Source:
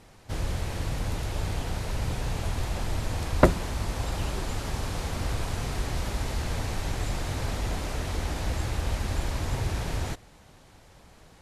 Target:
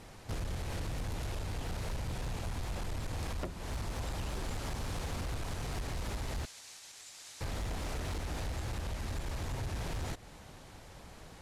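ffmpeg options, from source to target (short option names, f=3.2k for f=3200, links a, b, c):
-filter_complex "[0:a]acompressor=threshold=-34dB:ratio=8,asettb=1/sr,asplit=3[a][b][c];[a]atrim=end=6.454[d];[b]atrim=start=6.45:end=7.41,asetpts=PTS-STARTPTS,afade=t=in:d=0.004:c=qsin,afade=t=out:st=0.956:d=0.004:c=qsin,bandpass=f=7k:t=q:w=0.95:csg=0[e];[c]atrim=start=7.406[f];[d][e]acrossfade=d=0.004:c1=hsin:c2=qsin[g];[g][f]acrossfade=d=0.004:c1=qsin:c2=hsin,asoftclip=type=hard:threshold=-34.5dB,volume=2dB"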